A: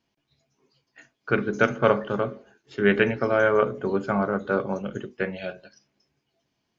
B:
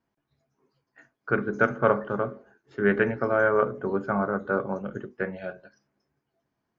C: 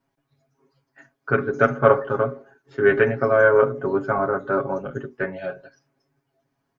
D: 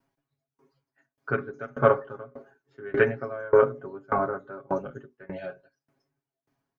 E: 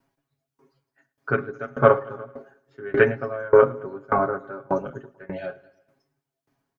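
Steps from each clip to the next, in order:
resonant high shelf 2.1 kHz -9 dB, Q 1.5; trim -2.5 dB
comb 7.3 ms, depth 83%; trim +2.5 dB
sawtooth tremolo in dB decaying 1.7 Hz, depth 27 dB; trim +1 dB
feedback delay 109 ms, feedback 54%, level -22 dB; trim +4 dB

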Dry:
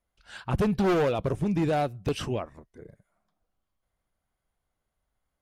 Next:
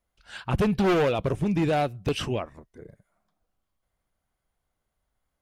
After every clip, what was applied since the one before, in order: dynamic bell 2.7 kHz, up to +4 dB, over -49 dBFS, Q 1.3; trim +1.5 dB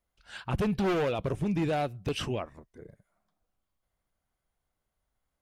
peak limiter -19.5 dBFS, peak gain reduction 3.5 dB; trim -3 dB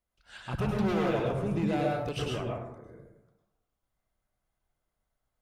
plate-style reverb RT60 0.87 s, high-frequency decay 0.4×, pre-delay 90 ms, DRR -2 dB; trim -4.5 dB

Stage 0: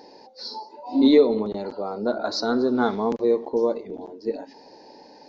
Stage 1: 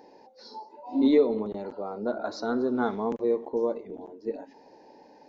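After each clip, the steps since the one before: peaking EQ 4.6 kHz -11 dB 0.67 oct; trim -5 dB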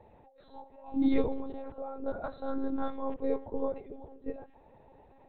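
monotone LPC vocoder at 8 kHz 270 Hz; trim -4.5 dB

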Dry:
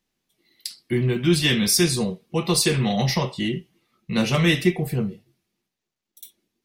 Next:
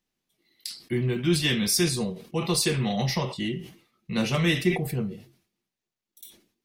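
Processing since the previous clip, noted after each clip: decay stretcher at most 120 dB/s; trim -4.5 dB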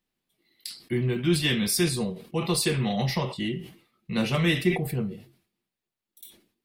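peaking EQ 6.1 kHz -7 dB 0.45 oct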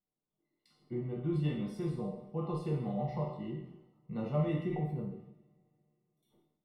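Savitzky-Golay filter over 65 samples; feedback comb 150 Hz, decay 0.51 s, harmonics all, mix 80%; two-slope reverb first 0.72 s, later 2.9 s, from -27 dB, DRR 1 dB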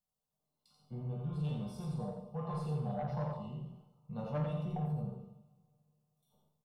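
static phaser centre 800 Hz, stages 4; saturation -32.5 dBFS, distortion -14 dB; on a send: delay 86 ms -4.5 dB; on the sum: trim +2 dB

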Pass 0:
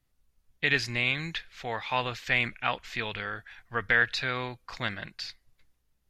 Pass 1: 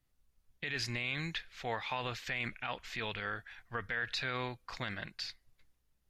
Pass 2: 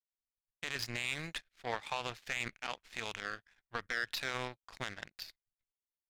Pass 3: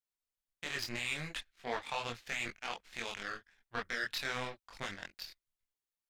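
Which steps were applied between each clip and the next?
peak limiter -22.5 dBFS, peak gain reduction 12 dB; trim -3 dB
power-law waveshaper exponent 2; trim +3.5 dB
chorus voices 6, 1.1 Hz, delay 23 ms, depth 3 ms; trim +3 dB

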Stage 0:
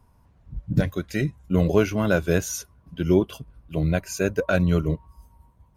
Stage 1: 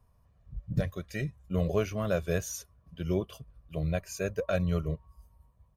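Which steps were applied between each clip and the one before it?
comb 1.7 ms, depth 51%; trim -9 dB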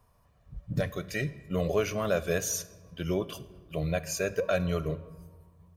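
bass shelf 230 Hz -10 dB; in parallel at +2 dB: peak limiter -28.5 dBFS, peak gain reduction 10 dB; on the sum: reverberation RT60 1.4 s, pre-delay 7 ms, DRR 14 dB

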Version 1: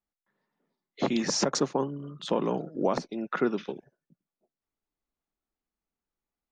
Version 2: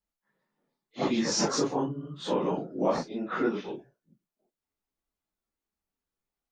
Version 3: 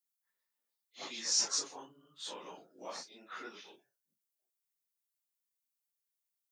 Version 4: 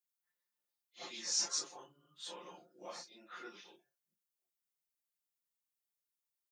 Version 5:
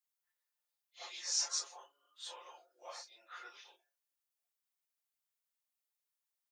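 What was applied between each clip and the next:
phase randomisation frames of 100 ms
differentiator; trim +2 dB
comb 5.7 ms, depth 74%; trim -5.5 dB
high-pass 560 Hz 24 dB/octave

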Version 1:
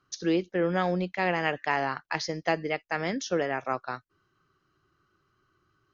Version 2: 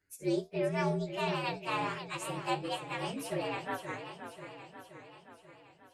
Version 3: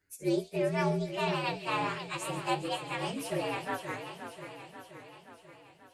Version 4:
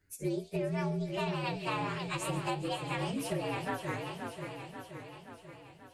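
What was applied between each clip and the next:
frequency axis rescaled in octaves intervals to 118%; flange 1.4 Hz, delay 9.6 ms, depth 5 ms, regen +69%; modulated delay 531 ms, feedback 59%, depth 168 cents, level -9.5 dB
feedback echo behind a high-pass 136 ms, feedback 81%, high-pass 3.3 kHz, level -12 dB; trim +2 dB
bass shelf 200 Hz +10.5 dB; compression 10:1, threshold -31 dBFS, peak gain reduction 10.5 dB; trim +1 dB

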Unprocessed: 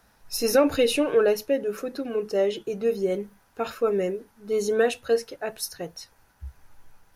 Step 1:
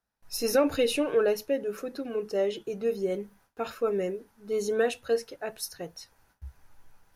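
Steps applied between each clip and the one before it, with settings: gate with hold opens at -49 dBFS; trim -4 dB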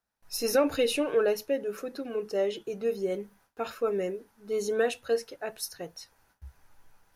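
bass shelf 230 Hz -4 dB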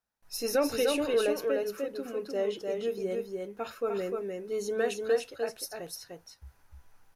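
delay 301 ms -3.5 dB; trim -3 dB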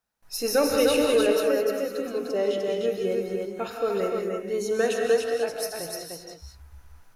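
gated-style reverb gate 230 ms rising, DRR 3 dB; trim +4.5 dB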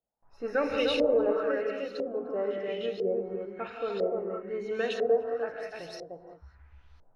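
LFO low-pass saw up 1 Hz 540–4300 Hz; trim -7 dB

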